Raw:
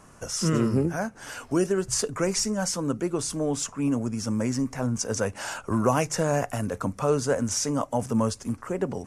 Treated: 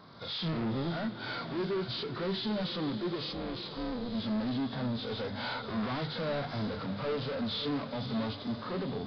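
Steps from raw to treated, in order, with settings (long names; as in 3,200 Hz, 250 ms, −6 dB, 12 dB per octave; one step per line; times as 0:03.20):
hearing-aid frequency compression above 1,300 Hz 1.5 to 1
camcorder AGC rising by 11 dB per second
high-pass filter 99 Hz 12 dB per octave
mains-hum notches 50/100/150/200 Hz
gain into a clipping stage and back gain 31.5 dB
0:03.32–0:04.15: amplitude modulation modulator 250 Hz, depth 95%
on a send: feedback delay with all-pass diffusion 517 ms, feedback 60%, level −12 dB
on the sum: downsampling to 11,025 Hz
harmonic and percussive parts rebalanced percussive −11 dB
level +2 dB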